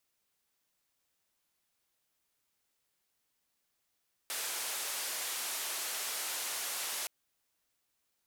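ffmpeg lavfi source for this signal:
ffmpeg -f lavfi -i "anoisesrc=color=white:duration=2.77:sample_rate=44100:seed=1,highpass=frequency=500,lowpass=frequency=13000,volume=-30.2dB" out.wav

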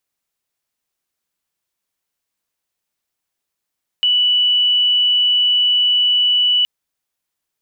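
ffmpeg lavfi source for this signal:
ffmpeg -f lavfi -i "sine=frequency=2960:duration=2.62:sample_rate=44100,volume=6.56dB" out.wav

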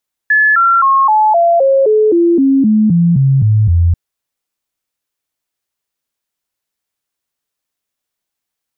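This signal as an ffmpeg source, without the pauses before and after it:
ffmpeg -f lavfi -i "aevalsrc='0.473*clip(min(mod(t,0.26),0.26-mod(t,0.26))/0.005,0,1)*sin(2*PI*1720*pow(2,-floor(t/0.26)/3)*mod(t,0.26))':duration=3.64:sample_rate=44100" out.wav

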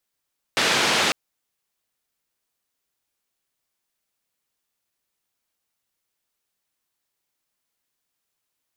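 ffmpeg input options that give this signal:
ffmpeg -f lavfi -i "anoisesrc=color=white:duration=0.55:sample_rate=44100:seed=1,highpass=frequency=160,lowpass=frequency=4000,volume=-8.5dB" out.wav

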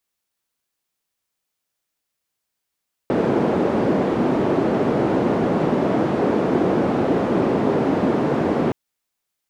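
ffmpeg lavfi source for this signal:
ffmpeg -f lavfi -i "anoisesrc=color=white:duration=5.62:sample_rate=44100:seed=1,highpass=frequency=220,lowpass=frequency=360,volume=6.6dB" out.wav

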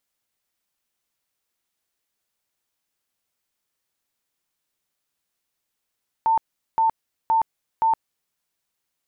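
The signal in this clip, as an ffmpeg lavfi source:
ffmpeg -f lavfi -i "aevalsrc='0.168*sin(2*PI*897*mod(t,0.52))*lt(mod(t,0.52),105/897)':duration=2.08:sample_rate=44100" out.wav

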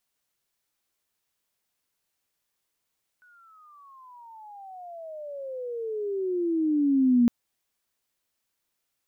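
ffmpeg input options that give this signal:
ffmpeg -f lavfi -i "aevalsrc='pow(10,(-15.5+38.5*(t/4.06-1))/20)*sin(2*PI*1490*4.06/(-32*log(2)/12)*(exp(-32*log(2)/12*t/4.06)-1))':duration=4.06:sample_rate=44100" out.wav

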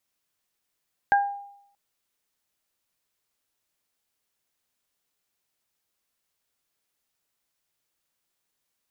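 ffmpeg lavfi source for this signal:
ffmpeg -f lavfi -i "aevalsrc='0.178*pow(10,-3*t/0.74)*sin(2*PI*805*t)+0.126*pow(10,-3*t/0.27)*sin(2*PI*1610*t)':duration=0.63:sample_rate=44100" out.wav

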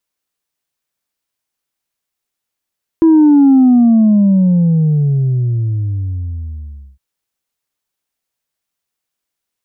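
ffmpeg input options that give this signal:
ffmpeg -f lavfi -i "aevalsrc='0.562*clip((3.96-t)/3.48,0,1)*tanh(1.12*sin(2*PI*330*3.96/log(65/330)*(exp(log(65/330)*t/3.96)-1)))/tanh(1.12)':duration=3.96:sample_rate=44100" out.wav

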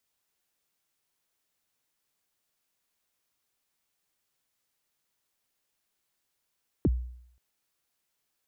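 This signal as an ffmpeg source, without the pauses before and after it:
ffmpeg -f lavfi -i "aevalsrc='0.126*pow(10,-3*t/0.68)*sin(2*PI*(420*0.036/log(61/420)*(exp(log(61/420)*min(t,0.036)/0.036)-1)+61*max(t-0.036,0)))':duration=0.53:sample_rate=44100" out.wav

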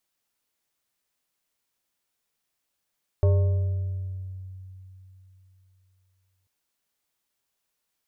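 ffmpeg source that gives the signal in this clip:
ffmpeg -f lavfi -i "aevalsrc='0.178*pow(10,-3*t/3.43)*sin(2*PI*93.9*t+0.53*pow(10,-3*t/2.35)*sin(2*PI*5.32*93.9*t))':duration=3.24:sample_rate=44100" out.wav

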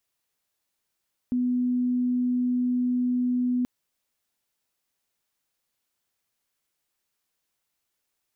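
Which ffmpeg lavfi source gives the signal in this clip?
ffmpeg -f lavfi -i "aevalsrc='0.0841*sin(2*PI*248*t)':duration=2.33:sample_rate=44100" out.wav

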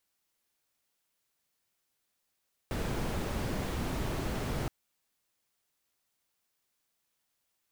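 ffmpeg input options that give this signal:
ffmpeg -f lavfi -i "anoisesrc=color=brown:amplitude=0.105:duration=1.97:sample_rate=44100:seed=1" out.wav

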